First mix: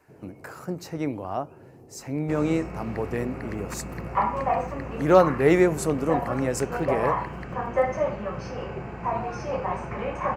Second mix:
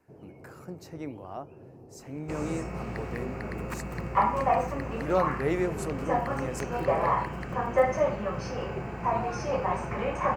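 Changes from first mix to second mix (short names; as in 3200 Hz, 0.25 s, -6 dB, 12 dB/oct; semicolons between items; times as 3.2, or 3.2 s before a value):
speech -9.5 dB; second sound: add high shelf 7000 Hz +9 dB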